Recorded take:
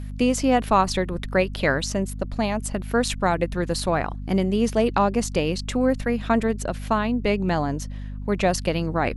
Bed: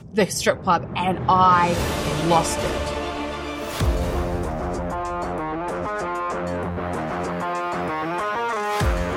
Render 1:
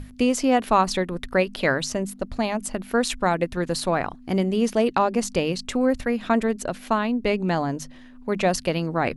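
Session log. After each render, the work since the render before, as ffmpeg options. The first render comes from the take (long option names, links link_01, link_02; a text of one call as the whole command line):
ffmpeg -i in.wav -af "bandreject=frequency=50:width_type=h:width=6,bandreject=frequency=100:width_type=h:width=6,bandreject=frequency=150:width_type=h:width=6,bandreject=frequency=200:width_type=h:width=6" out.wav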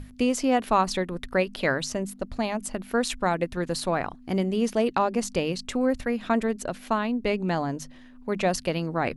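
ffmpeg -i in.wav -af "volume=-3dB" out.wav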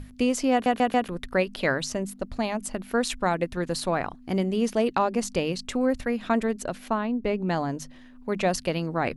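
ffmpeg -i in.wav -filter_complex "[0:a]asettb=1/sr,asplit=3[link_01][link_02][link_03];[link_01]atrim=end=6.884[link_04];[link_02]atrim=start=6.88:end=7.5,asetpts=PTS-STARTPTS,afade=type=in:duration=0.004:curve=qsin,afade=type=out:start_time=0.616:duration=0.004:curve=qsin,highshelf=frequency=2300:gain=-10[link_05];[link_03]atrim=start=7.496[link_06];[link_04][link_05]acrossfade=duration=0.004:curve1=hsin:curve2=qsin[link_07];[link_07][link_06]acrossfade=duration=0.004:curve1=qsin:curve2=hsin,asplit=5[link_08][link_09][link_10][link_11][link_12];[link_08]atrim=end=0.662[link_13];[link_09]atrim=start=0.518:end=0.662[link_14];[link_10]atrim=start=0.518:end=0.662[link_15];[link_11]atrim=start=0.518:end=0.662[link_16];[link_12]atrim=start=1.078[link_17];[link_13][link_14]acrossfade=duration=0.004:curve1=hsin:curve2=hsin[link_18];[link_18][link_15]acrossfade=duration=0.004:curve1=hsin:curve2=hsin[link_19];[link_19][link_16]acrossfade=duration=0.004:curve1=hsin:curve2=hsin[link_20];[link_20][link_17]acrossfade=duration=0.004:curve1=hsin:curve2=hsin" out.wav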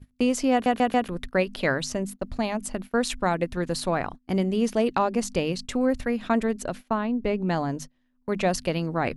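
ffmpeg -i in.wav -af "agate=range=-23dB:threshold=-37dB:ratio=16:detection=peak,lowshelf=frequency=180:gain=3" out.wav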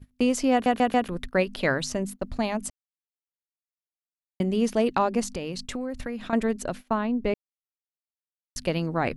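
ffmpeg -i in.wav -filter_complex "[0:a]asettb=1/sr,asplit=3[link_01][link_02][link_03];[link_01]atrim=end=5.234[link_04];[link_02]atrim=start=5.23:end=6.33,asetpts=PTS-STARTPTS,afade=type=in:duration=0.004:curve=qsin,afade=type=out:start_time=1.096:duration=0.004:curve=qsin,acompressor=threshold=-28dB:ratio=5:attack=3.2:release=140:knee=1:detection=peak[link_05];[link_03]atrim=start=6.326[link_06];[link_04][link_05]acrossfade=duration=0.004:curve1=hsin:curve2=qsin[link_07];[link_07][link_06]acrossfade=duration=0.004:curve1=qsin:curve2=hsin,asplit=5[link_08][link_09][link_10][link_11][link_12];[link_08]atrim=end=2.7,asetpts=PTS-STARTPTS,afade=type=out:start_time=2.696:duration=0.004:curve=hsin[link_13];[link_09]atrim=start=2.7:end=4.4,asetpts=PTS-STARTPTS,volume=0[link_14];[link_10]atrim=start=4.4:end=7.34,asetpts=PTS-STARTPTS,afade=type=in:duration=0.004:curve=hsin,afade=type=out:start_time=2.936:duration=0.004:curve=hsin[link_15];[link_11]atrim=start=7.34:end=8.56,asetpts=PTS-STARTPTS,volume=0[link_16];[link_12]atrim=start=8.56,asetpts=PTS-STARTPTS,afade=type=in:duration=0.004:curve=hsin[link_17];[link_13][link_14][link_15][link_16][link_17]concat=n=5:v=0:a=1" out.wav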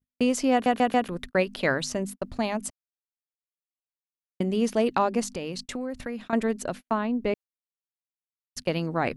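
ffmpeg -i in.wav -af "agate=range=-31dB:threshold=-36dB:ratio=16:detection=peak,lowshelf=frequency=78:gain=-9" out.wav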